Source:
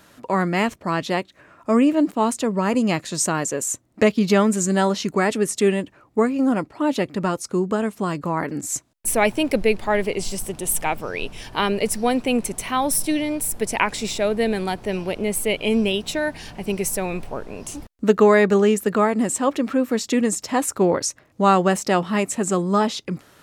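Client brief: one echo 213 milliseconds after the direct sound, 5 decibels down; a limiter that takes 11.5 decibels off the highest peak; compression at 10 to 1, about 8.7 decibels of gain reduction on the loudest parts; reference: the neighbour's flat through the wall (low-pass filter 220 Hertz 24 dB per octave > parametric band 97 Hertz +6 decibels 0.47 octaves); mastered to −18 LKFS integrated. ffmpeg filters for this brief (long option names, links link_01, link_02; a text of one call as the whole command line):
ffmpeg -i in.wav -af "acompressor=threshold=-18dB:ratio=10,alimiter=limit=-17dB:level=0:latency=1,lowpass=frequency=220:width=0.5412,lowpass=frequency=220:width=1.3066,equalizer=frequency=97:width_type=o:width=0.47:gain=6,aecho=1:1:213:0.562,volume=15dB" out.wav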